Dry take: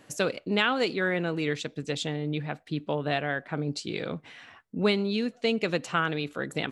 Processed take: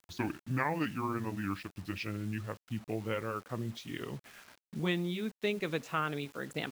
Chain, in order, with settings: gliding pitch shift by -9 st ending unshifted; requantised 8-bit, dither none; gain -6 dB

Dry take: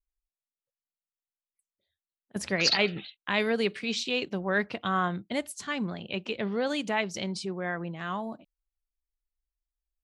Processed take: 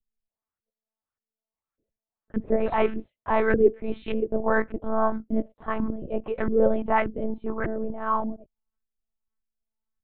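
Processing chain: LFO low-pass saw up 1.7 Hz 310–1600 Hz; monotone LPC vocoder at 8 kHz 220 Hz; gain +4.5 dB

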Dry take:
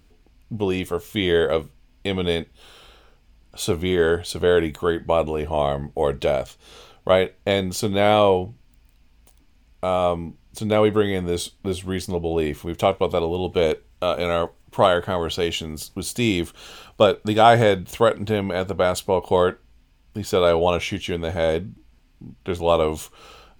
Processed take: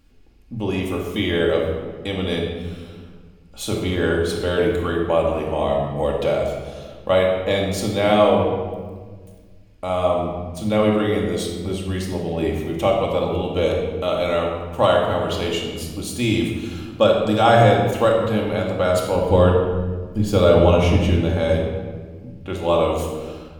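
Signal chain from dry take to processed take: 19.15–21.23 low shelf 280 Hz +11.5 dB; shoebox room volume 1600 m³, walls mixed, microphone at 2.3 m; gain -3.5 dB

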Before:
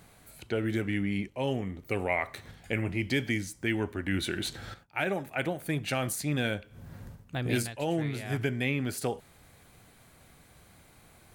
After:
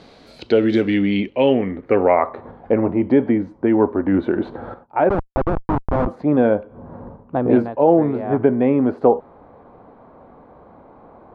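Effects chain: ten-band EQ 125 Hz -3 dB, 250 Hz +10 dB, 500 Hz +11 dB, 1000 Hz +4 dB, 4000 Hz +5 dB, 8000 Hz -5 dB; 5.09–6.07 Schmitt trigger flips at -20 dBFS; low-pass sweep 4800 Hz -> 1000 Hz, 0.86–2.36; gain +4 dB

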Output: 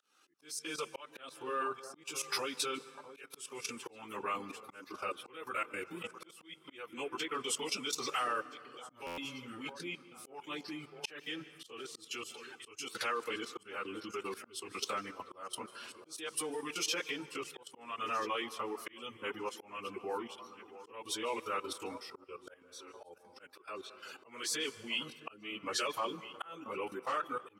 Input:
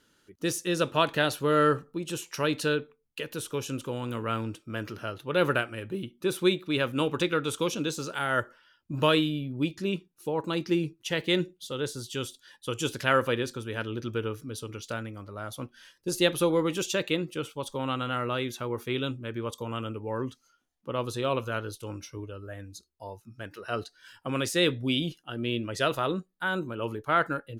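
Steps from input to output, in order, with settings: pitch shift by moving bins -2 st; compressor 4:1, threshold -34 dBFS, peak gain reduction 13 dB; dynamic EQ 700 Hz, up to -4 dB, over -47 dBFS, Q 0.98; echo with dull and thin repeats by turns 0.663 s, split 1300 Hz, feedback 61%, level -13 dB; reverb removal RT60 0.82 s; level quantiser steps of 15 dB; reverb RT60 2.2 s, pre-delay 0.142 s, DRR 17 dB; auto swell 0.351 s; HPF 500 Hz 12 dB/oct; stuck buffer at 9.06, samples 512, times 9; gain +12.5 dB

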